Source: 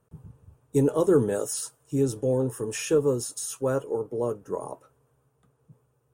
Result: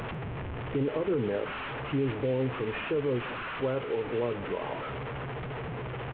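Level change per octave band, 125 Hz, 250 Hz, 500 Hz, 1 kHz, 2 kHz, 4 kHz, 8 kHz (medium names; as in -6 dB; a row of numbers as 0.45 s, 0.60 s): -2.0 dB, -4.5 dB, -5.0 dB, +2.5 dB, +7.0 dB, 0.0 dB, under -40 dB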